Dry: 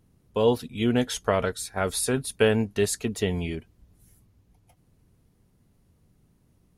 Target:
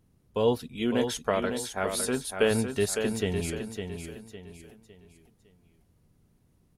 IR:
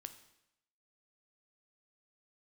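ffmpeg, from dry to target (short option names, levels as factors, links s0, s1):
-filter_complex "[0:a]asettb=1/sr,asplit=3[s0][s1][s2];[s0]atrim=end=0.754[s3];[s1]atrim=start=0.75:end=2.51,asetpts=PTS-STARTPTS,afade=t=in:d=0.004:c=qsin,afade=t=out:st=1.756:d=0.004:c=qsin,equalizer=f=110:w=1.9:g=-10.5[s4];[s2]atrim=start=2.506[s5];[s3][s4]acrossfade=d=0.004:c1=hsin:c2=qsin[s6];[s6][s5]acrossfade=d=0.004:c1=qsin:c2=hsin,asplit=2[s7][s8];[s8]aecho=0:1:557|1114|1671|2228:0.447|0.161|0.0579|0.0208[s9];[s7][s9]amix=inputs=2:normalize=0,volume=0.708"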